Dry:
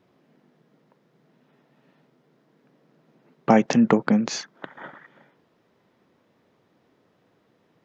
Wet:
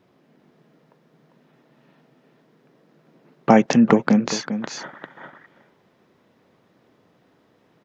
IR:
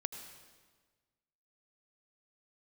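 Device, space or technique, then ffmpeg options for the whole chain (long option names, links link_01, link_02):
ducked delay: -filter_complex "[0:a]asplit=3[link_01][link_02][link_03];[link_02]adelay=398,volume=-4dB[link_04];[link_03]apad=whole_len=363539[link_05];[link_04][link_05]sidechaincompress=threshold=-24dB:ratio=8:attack=9:release=960[link_06];[link_01][link_06]amix=inputs=2:normalize=0,volume=3dB"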